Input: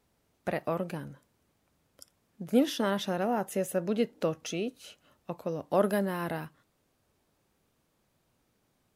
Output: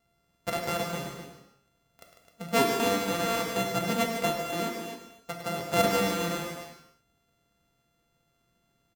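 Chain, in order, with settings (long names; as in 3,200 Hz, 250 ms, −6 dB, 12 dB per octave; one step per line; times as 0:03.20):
samples sorted by size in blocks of 64 samples
loudspeakers that aren't time-aligned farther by 36 metres −10 dB, 51 metres −9 dB, 89 metres −9 dB
reverb whose tail is shaped and stops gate 330 ms falling, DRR 2.5 dB
level −1.5 dB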